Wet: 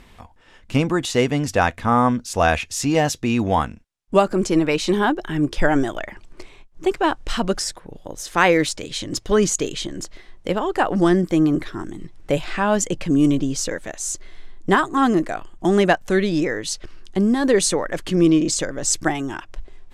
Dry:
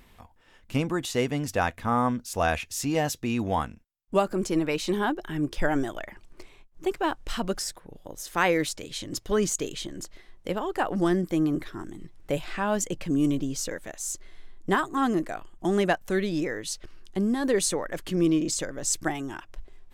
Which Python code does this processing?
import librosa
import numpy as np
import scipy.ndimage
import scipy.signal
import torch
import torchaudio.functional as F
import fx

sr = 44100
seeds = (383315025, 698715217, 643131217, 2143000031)

y = scipy.signal.sosfilt(scipy.signal.butter(2, 9200.0, 'lowpass', fs=sr, output='sos'), x)
y = y * librosa.db_to_amplitude(7.5)